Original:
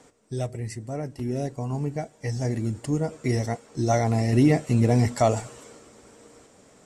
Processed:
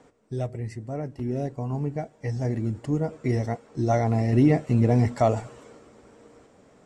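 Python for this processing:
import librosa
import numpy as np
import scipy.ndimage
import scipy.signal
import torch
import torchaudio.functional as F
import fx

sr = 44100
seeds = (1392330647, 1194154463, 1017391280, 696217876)

y = fx.lowpass(x, sr, hz=2000.0, slope=6)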